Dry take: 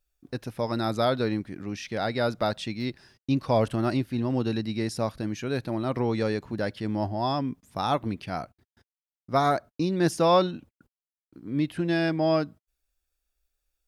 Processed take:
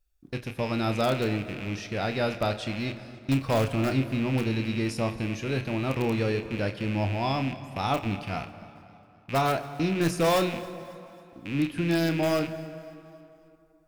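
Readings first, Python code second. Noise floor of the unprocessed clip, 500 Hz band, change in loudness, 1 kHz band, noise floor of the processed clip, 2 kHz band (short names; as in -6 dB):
under -85 dBFS, -1.5 dB, -0.5 dB, -2.0 dB, -57 dBFS, +3.0 dB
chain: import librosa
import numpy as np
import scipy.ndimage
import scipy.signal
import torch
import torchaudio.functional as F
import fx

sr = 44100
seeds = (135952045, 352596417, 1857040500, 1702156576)

p1 = fx.rattle_buzz(x, sr, strikes_db=-40.0, level_db=-25.0)
p2 = fx.low_shelf(p1, sr, hz=99.0, db=9.0)
p3 = (np.mod(10.0 ** (14.0 / 20.0) * p2 + 1.0, 2.0) - 1.0) / 10.0 ** (14.0 / 20.0)
p4 = p2 + F.gain(torch.from_numpy(p3), -8.0).numpy()
p5 = fx.doubler(p4, sr, ms=30.0, db=-10)
p6 = p5 + fx.echo_feedback(p5, sr, ms=272, feedback_pct=50, wet_db=-21.5, dry=0)
p7 = fx.rev_plate(p6, sr, seeds[0], rt60_s=3.0, hf_ratio=0.6, predelay_ms=0, drr_db=12.0)
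y = F.gain(torch.from_numpy(p7), -5.0).numpy()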